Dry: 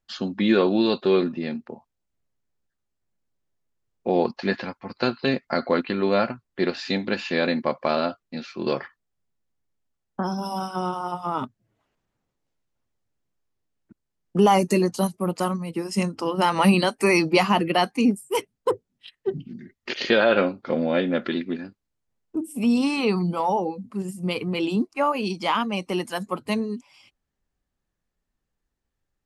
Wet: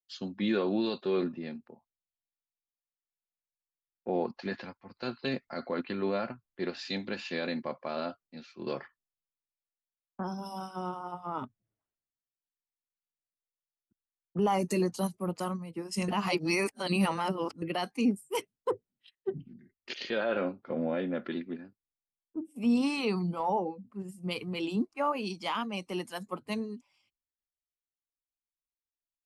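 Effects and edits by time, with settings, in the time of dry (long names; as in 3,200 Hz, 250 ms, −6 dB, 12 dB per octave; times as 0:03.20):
0:16.08–0:17.62: reverse
0:19.98–0:22.56: high-shelf EQ 5,400 Hz −11.5 dB
whole clip: brickwall limiter −13.5 dBFS; multiband upward and downward expander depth 70%; level −7.5 dB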